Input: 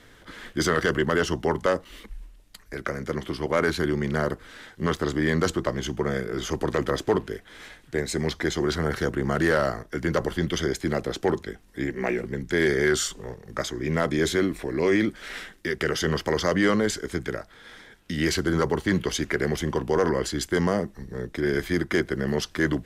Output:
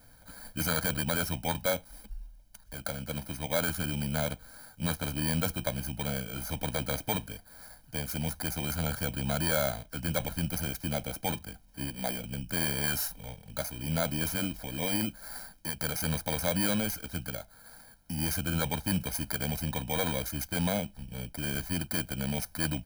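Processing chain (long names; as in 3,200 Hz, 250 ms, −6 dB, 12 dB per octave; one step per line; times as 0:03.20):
samples in bit-reversed order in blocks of 16 samples
comb filter 1.3 ms, depth 99%
level −8 dB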